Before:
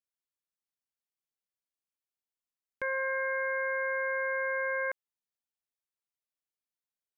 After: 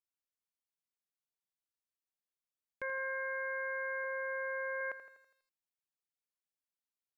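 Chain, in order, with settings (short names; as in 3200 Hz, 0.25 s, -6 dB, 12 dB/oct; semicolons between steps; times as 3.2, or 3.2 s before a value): 4.04–4.81 tilt -1.5 dB/oct; lo-fi delay 82 ms, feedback 55%, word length 11-bit, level -12 dB; gain -6 dB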